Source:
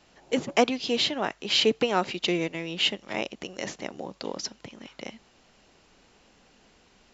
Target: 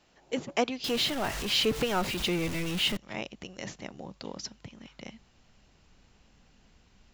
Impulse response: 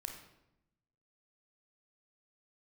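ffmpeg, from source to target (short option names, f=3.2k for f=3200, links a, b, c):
-filter_complex "[0:a]asettb=1/sr,asplit=3[a][b][c];[a]atrim=end=0.844[d];[b]atrim=start=0.84:end=2.97,asetpts=PTS-STARTPTS,afade=t=in:d=0.004:c=qsin,afade=t=out:st=2.126:d=0.004:c=qsin,aeval=exprs='val(0)+0.5*0.0531*sgn(val(0))':c=same[e];[c]atrim=start=2.966[f];[d][e]acrossfade=d=0.004:c1=hsin:c2=qsin[g];[g][f]acrossfade=d=0.004:c1=qsin:c2=hsin,asubboost=boost=4:cutoff=180,volume=-5.5dB"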